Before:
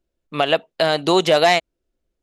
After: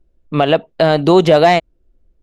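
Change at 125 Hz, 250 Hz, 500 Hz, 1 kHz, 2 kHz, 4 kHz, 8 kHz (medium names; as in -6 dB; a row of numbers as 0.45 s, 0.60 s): +12.0 dB, +8.5 dB, +5.5 dB, +4.5 dB, +0.5 dB, -1.5 dB, no reading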